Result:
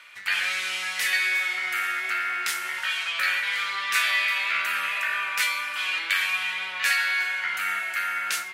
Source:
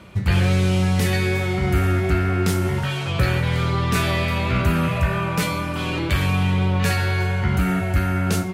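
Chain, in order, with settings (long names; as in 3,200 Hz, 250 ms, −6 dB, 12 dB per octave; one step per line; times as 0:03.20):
high-pass with resonance 1,800 Hz, resonance Q 1.9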